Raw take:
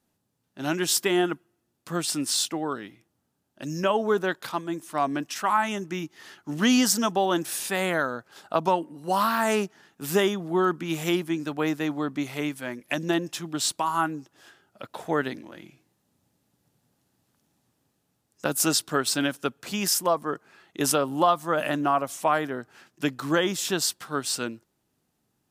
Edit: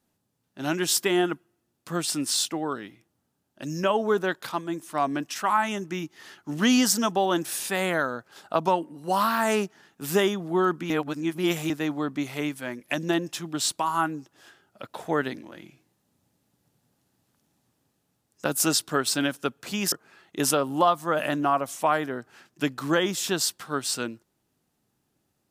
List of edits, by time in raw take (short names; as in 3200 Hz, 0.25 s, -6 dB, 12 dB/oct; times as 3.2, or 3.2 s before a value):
10.9–11.7 reverse
19.92–20.33 cut